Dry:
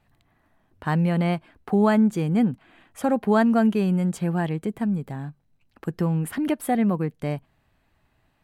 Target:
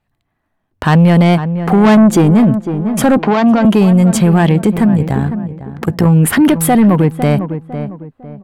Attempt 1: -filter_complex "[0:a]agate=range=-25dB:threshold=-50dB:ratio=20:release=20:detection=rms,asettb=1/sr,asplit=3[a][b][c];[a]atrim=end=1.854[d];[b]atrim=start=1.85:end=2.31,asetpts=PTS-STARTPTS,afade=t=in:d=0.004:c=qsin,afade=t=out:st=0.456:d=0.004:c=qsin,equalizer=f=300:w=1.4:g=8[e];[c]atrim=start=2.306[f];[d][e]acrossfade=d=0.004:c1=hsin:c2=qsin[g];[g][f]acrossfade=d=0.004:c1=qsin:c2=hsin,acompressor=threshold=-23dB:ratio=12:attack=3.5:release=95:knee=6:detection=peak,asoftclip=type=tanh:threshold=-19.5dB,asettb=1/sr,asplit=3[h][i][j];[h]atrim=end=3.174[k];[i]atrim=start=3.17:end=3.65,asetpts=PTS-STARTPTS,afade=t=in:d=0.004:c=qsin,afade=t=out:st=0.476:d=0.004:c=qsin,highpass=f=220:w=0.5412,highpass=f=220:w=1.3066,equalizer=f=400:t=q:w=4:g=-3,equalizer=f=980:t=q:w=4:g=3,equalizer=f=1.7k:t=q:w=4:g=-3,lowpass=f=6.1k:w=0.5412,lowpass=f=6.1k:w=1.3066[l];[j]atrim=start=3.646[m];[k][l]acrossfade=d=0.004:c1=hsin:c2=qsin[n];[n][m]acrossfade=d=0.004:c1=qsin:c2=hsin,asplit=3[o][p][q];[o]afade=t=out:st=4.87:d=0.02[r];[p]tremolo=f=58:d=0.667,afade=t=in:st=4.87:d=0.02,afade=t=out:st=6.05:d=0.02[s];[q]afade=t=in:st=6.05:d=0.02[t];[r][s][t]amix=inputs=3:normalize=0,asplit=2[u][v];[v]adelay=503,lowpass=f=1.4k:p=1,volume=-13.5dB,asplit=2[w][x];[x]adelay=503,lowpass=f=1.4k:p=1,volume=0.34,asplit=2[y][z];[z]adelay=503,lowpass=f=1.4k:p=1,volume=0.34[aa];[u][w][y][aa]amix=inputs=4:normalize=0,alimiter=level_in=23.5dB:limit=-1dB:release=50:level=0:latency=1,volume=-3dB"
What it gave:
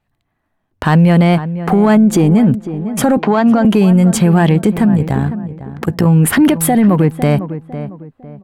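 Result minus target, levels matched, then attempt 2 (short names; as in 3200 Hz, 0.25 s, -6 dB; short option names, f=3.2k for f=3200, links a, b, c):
compressor: peak gain reduction +13 dB
-filter_complex "[0:a]agate=range=-25dB:threshold=-50dB:ratio=20:release=20:detection=rms,asettb=1/sr,asplit=3[a][b][c];[a]atrim=end=1.854[d];[b]atrim=start=1.85:end=2.31,asetpts=PTS-STARTPTS,afade=t=in:d=0.004:c=qsin,afade=t=out:st=0.456:d=0.004:c=qsin,equalizer=f=300:w=1.4:g=8[e];[c]atrim=start=2.306[f];[d][e]acrossfade=d=0.004:c1=hsin:c2=qsin[g];[g][f]acrossfade=d=0.004:c1=qsin:c2=hsin,asoftclip=type=tanh:threshold=-19.5dB,asettb=1/sr,asplit=3[h][i][j];[h]atrim=end=3.174[k];[i]atrim=start=3.17:end=3.65,asetpts=PTS-STARTPTS,afade=t=in:d=0.004:c=qsin,afade=t=out:st=0.476:d=0.004:c=qsin,highpass=f=220:w=0.5412,highpass=f=220:w=1.3066,equalizer=f=400:t=q:w=4:g=-3,equalizer=f=980:t=q:w=4:g=3,equalizer=f=1.7k:t=q:w=4:g=-3,lowpass=f=6.1k:w=0.5412,lowpass=f=6.1k:w=1.3066[l];[j]atrim=start=3.646[m];[k][l]acrossfade=d=0.004:c1=hsin:c2=qsin[n];[n][m]acrossfade=d=0.004:c1=qsin:c2=hsin,asplit=3[o][p][q];[o]afade=t=out:st=4.87:d=0.02[r];[p]tremolo=f=58:d=0.667,afade=t=in:st=4.87:d=0.02,afade=t=out:st=6.05:d=0.02[s];[q]afade=t=in:st=6.05:d=0.02[t];[r][s][t]amix=inputs=3:normalize=0,asplit=2[u][v];[v]adelay=503,lowpass=f=1.4k:p=1,volume=-13.5dB,asplit=2[w][x];[x]adelay=503,lowpass=f=1.4k:p=1,volume=0.34,asplit=2[y][z];[z]adelay=503,lowpass=f=1.4k:p=1,volume=0.34[aa];[u][w][y][aa]amix=inputs=4:normalize=0,alimiter=level_in=23.5dB:limit=-1dB:release=50:level=0:latency=1,volume=-3dB"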